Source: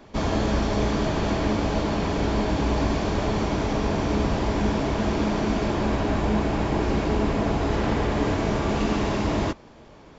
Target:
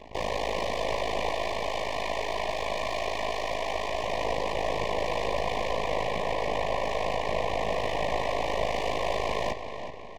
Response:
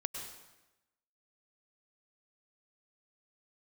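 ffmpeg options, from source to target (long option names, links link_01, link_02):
-filter_complex "[0:a]asettb=1/sr,asplit=3[link_01][link_02][link_03];[link_01]atrim=end=1.294[link_04];[link_02]atrim=start=1.29:end=4.04,asetpts=PTS-STARTPTS,afade=type=in:duration=0.004:curve=qsin,afade=type=out:start_time=2.746:duration=0.004:curve=qsin,highpass=860[link_05];[link_03]atrim=start=4.036[link_06];[link_04][link_05]acrossfade=duration=0.004:curve1=hsin:curve2=qsin[link_07];[link_07][link_06]acrossfade=duration=0.004:curve1=qsin:curve2=hsin,afftfilt=real='re*lt(hypot(re,im),0.2)':imag='im*lt(hypot(re,im),0.2)':win_size=1024:overlap=0.75,aecho=1:1:1.7:0.64,asoftclip=type=tanh:threshold=-24.5dB,aeval=exprs='0.0596*(cos(1*acos(clip(val(0)/0.0596,-1,1)))-cos(1*PI/2))+0.0211*(cos(4*acos(clip(val(0)/0.0596,-1,1)))-cos(4*PI/2))':channel_layout=same,aeval=exprs='abs(val(0))':channel_layout=same,tremolo=f=53:d=0.947,asplit=2[link_08][link_09];[link_09]highpass=frequency=720:poles=1,volume=12dB,asoftclip=type=tanh:threshold=-21dB[link_10];[link_08][link_10]amix=inputs=2:normalize=0,lowpass=frequency=1100:poles=1,volume=-6dB,asuperstop=centerf=1400:order=8:qfactor=1.8,asplit=2[link_11][link_12];[link_12]adelay=371,lowpass=frequency=4800:poles=1,volume=-9dB,asplit=2[link_13][link_14];[link_14]adelay=371,lowpass=frequency=4800:poles=1,volume=0.42,asplit=2[link_15][link_16];[link_16]adelay=371,lowpass=frequency=4800:poles=1,volume=0.42,asplit=2[link_17][link_18];[link_18]adelay=371,lowpass=frequency=4800:poles=1,volume=0.42,asplit=2[link_19][link_20];[link_20]adelay=371,lowpass=frequency=4800:poles=1,volume=0.42[link_21];[link_11][link_13][link_15][link_17][link_19][link_21]amix=inputs=6:normalize=0,volume=6.5dB"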